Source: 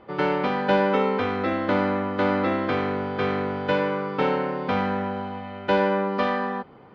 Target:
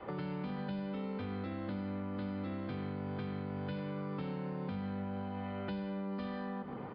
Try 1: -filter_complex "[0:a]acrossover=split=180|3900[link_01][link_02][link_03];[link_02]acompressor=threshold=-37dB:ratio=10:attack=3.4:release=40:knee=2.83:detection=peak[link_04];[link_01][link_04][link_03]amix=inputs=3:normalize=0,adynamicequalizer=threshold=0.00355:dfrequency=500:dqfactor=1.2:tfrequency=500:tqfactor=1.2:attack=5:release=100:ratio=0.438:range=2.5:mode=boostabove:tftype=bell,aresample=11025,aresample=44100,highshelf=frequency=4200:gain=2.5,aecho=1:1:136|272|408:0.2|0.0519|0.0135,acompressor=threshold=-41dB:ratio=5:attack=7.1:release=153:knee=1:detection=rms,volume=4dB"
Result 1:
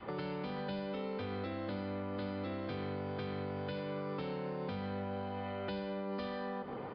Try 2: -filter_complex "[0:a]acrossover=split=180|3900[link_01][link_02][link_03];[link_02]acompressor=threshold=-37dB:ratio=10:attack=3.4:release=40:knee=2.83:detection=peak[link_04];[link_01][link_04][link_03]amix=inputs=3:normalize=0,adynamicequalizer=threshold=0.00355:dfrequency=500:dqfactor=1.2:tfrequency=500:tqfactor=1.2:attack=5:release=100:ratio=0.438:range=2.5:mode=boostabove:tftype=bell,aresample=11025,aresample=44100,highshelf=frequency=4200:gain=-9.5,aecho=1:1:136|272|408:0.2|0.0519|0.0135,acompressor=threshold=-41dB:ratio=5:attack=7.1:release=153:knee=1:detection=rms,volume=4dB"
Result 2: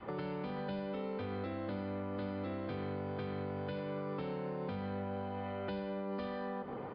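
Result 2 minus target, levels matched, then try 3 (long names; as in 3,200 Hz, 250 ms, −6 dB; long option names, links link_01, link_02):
500 Hz band +4.5 dB
-filter_complex "[0:a]acrossover=split=180|3900[link_01][link_02][link_03];[link_02]acompressor=threshold=-37dB:ratio=10:attack=3.4:release=40:knee=2.83:detection=peak[link_04];[link_01][link_04][link_03]amix=inputs=3:normalize=0,adynamicequalizer=threshold=0.00355:dfrequency=190:dqfactor=1.2:tfrequency=190:tqfactor=1.2:attack=5:release=100:ratio=0.438:range=2.5:mode=boostabove:tftype=bell,aresample=11025,aresample=44100,highshelf=frequency=4200:gain=-9.5,aecho=1:1:136|272|408:0.2|0.0519|0.0135,acompressor=threshold=-41dB:ratio=5:attack=7.1:release=153:knee=1:detection=rms,volume=4dB"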